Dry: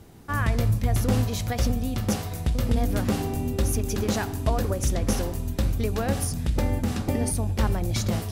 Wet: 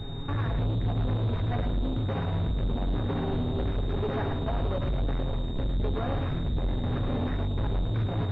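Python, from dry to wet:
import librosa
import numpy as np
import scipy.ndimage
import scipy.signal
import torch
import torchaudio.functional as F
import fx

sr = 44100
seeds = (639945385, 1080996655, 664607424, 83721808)

p1 = fx.low_shelf(x, sr, hz=92.0, db=11.5)
p2 = p1 + 0.74 * np.pad(p1, (int(7.3 * sr / 1000.0), 0))[:len(p1)]
p3 = fx.over_compress(p2, sr, threshold_db=-28.0, ratio=-1.0)
p4 = p2 + (p3 * 10.0 ** (-1.5 / 20.0))
p5 = 10.0 ** (-23.5 / 20.0) * np.tanh(p4 / 10.0 ** (-23.5 / 20.0))
p6 = p5 + fx.echo_single(p5, sr, ms=108, db=-8.0, dry=0)
p7 = fx.pwm(p6, sr, carrier_hz=3700.0)
y = p7 * 10.0 ** (-2.5 / 20.0)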